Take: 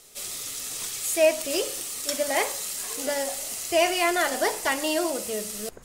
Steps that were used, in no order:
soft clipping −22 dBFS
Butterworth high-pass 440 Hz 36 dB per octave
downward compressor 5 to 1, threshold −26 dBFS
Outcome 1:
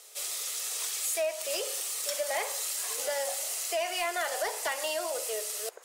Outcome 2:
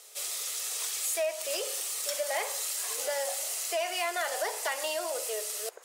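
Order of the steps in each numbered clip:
downward compressor, then Butterworth high-pass, then soft clipping
downward compressor, then soft clipping, then Butterworth high-pass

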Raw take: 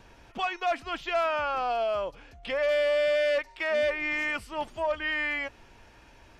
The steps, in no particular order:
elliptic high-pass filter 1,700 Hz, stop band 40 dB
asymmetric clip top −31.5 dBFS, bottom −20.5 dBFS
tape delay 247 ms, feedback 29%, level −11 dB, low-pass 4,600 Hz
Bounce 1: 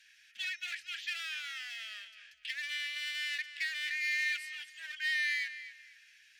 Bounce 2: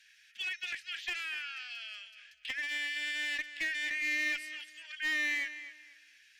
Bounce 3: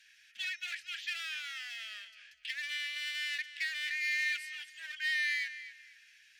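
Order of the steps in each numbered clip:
asymmetric clip, then elliptic high-pass filter, then tape delay
elliptic high-pass filter, then asymmetric clip, then tape delay
asymmetric clip, then tape delay, then elliptic high-pass filter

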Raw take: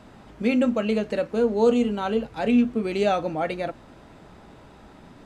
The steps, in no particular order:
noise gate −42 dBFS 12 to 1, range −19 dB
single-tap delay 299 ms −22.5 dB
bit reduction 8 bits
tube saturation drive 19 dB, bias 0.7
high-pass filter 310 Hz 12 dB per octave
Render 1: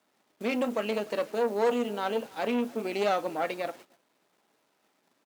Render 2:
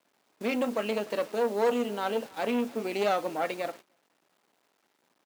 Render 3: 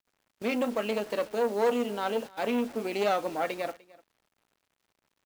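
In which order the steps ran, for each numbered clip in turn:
single-tap delay, then bit reduction, then noise gate, then tube saturation, then high-pass filter
tube saturation, then bit reduction, then single-tap delay, then noise gate, then high-pass filter
tube saturation, then high-pass filter, then bit reduction, then noise gate, then single-tap delay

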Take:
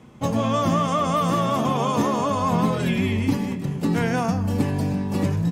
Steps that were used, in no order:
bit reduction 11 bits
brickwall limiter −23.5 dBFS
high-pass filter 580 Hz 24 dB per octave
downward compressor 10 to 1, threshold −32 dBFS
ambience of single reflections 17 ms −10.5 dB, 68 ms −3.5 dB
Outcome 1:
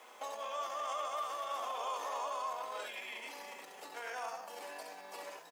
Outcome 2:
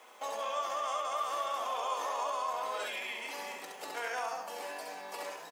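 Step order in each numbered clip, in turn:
ambience of single reflections, then brickwall limiter, then downward compressor, then bit reduction, then high-pass filter
brickwall limiter, then bit reduction, then high-pass filter, then downward compressor, then ambience of single reflections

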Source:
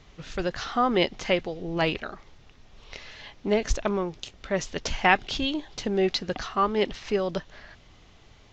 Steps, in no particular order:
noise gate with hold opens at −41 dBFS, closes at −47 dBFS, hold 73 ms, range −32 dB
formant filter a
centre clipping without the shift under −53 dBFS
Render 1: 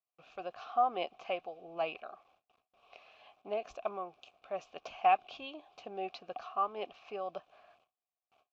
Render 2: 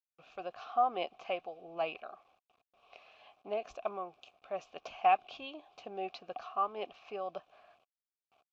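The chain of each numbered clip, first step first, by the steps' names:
centre clipping without the shift, then noise gate with hold, then formant filter
noise gate with hold, then centre clipping without the shift, then formant filter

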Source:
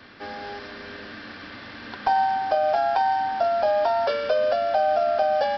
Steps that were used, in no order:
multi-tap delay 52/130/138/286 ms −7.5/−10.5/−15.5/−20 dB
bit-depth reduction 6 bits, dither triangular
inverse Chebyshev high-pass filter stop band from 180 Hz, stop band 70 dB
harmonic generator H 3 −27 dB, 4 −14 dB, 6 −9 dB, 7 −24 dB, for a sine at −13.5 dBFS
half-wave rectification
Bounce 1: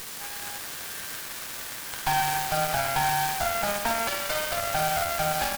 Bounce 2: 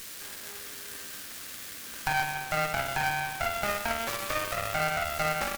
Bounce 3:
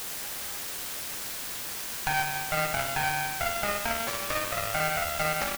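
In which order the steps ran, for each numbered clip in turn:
inverse Chebyshev high-pass filter, then bit-depth reduction, then multi-tap delay, then half-wave rectification, then harmonic generator
bit-depth reduction, then multi-tap delay, then half-wave rectification, then inverse Chebyshev high-pass filter, then harmonic generator
multi-tap delay, then half-wave rectification, then inverse Chebyshev high-pass filter, then harmonic generator, then bit-depth reduction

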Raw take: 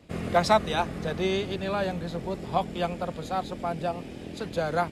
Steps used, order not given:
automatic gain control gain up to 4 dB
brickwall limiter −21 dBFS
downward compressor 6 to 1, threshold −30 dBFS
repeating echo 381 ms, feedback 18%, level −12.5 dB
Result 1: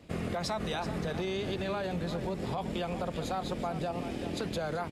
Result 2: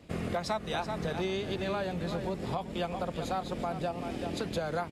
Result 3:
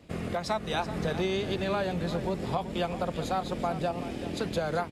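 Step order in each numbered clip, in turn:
automatic gain control, then brickwall limiter, then repeating echo, then downward compressor
repeating echo, then automatic gain control, then downward compressor, then brickwall limiter
downward compressor, then brickwall limiter, then automatic gain control, then repeating echo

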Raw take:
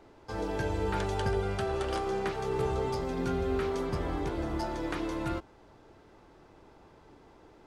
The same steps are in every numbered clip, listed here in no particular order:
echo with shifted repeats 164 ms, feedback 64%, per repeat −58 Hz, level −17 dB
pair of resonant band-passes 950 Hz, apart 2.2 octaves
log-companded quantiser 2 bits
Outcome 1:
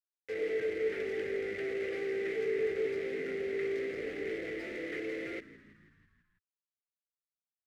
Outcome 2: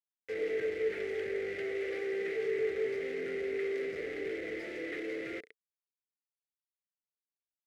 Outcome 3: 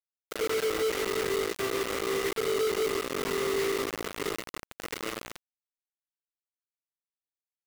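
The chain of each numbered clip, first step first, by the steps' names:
log-companded quantiser, then pair of resonant band-passes, then echo with shifted repeats
echo with shifted repeats, then log-companded quantiser, then pair of resonant band-passes
pair of resonant band-passes, then echo with shifted repeats, then log-companded quantiser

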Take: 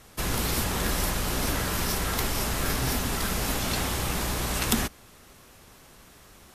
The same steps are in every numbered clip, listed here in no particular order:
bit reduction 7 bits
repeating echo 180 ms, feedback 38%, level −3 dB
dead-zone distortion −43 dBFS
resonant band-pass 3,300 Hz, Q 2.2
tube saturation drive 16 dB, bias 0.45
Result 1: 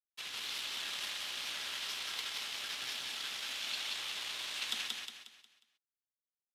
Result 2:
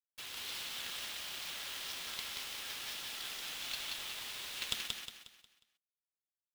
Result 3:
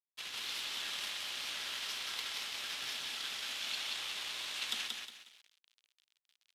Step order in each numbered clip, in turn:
dead-zone distortion, then bit reduction, then repeating echo, then tube saturation, then resonant band-pass
resonant band-pass, then tube saturation, then bit reduction, then dead-zone distortion, then repeating echo
tube saturation, then repeating echo, then bit reduction, then dead-zone distortion, then resonant band-pass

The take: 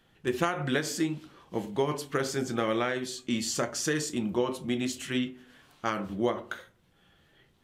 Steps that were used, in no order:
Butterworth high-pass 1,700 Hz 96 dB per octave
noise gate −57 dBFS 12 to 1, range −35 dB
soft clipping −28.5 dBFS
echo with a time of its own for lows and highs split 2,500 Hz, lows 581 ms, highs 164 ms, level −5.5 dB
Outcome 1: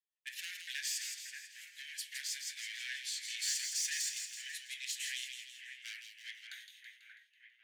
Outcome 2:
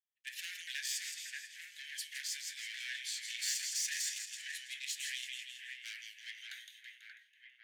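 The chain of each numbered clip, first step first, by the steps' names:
soft clipping, then Butterworth high-pass, then noise gate, then echo with a time of its own for lows and highs
noise gate, then echo with a time of its own for lows and highs, then soft clipping, then Butterworth high-pass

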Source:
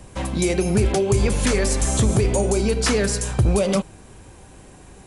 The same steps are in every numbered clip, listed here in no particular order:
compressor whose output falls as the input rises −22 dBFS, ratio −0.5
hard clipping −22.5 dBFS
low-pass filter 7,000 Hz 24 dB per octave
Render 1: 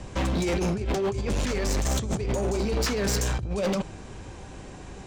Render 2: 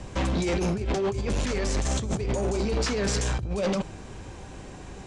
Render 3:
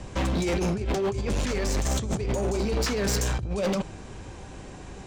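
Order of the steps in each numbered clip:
low-pass filter, then compressor whose output falls as the input rises, then hard clipping
compressor whose output falls as the input rises, then hard clipping, then low-pass filter
compressor whose output falls as the input rises, then low-pass filter, then hard clipping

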